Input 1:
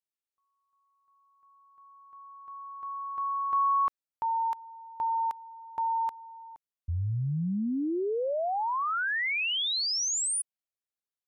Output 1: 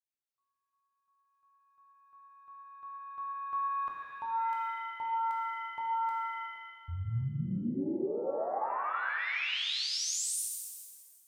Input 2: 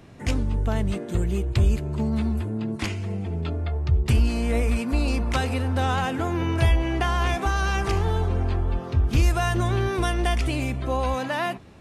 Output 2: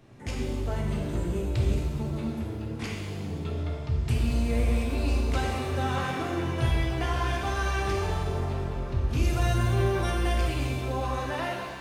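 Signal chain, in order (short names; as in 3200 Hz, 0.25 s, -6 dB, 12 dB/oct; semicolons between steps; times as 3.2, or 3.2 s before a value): shimmer reverb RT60 1.6 s, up +7 st, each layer -8 dB, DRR -2 dB; gain -9 dB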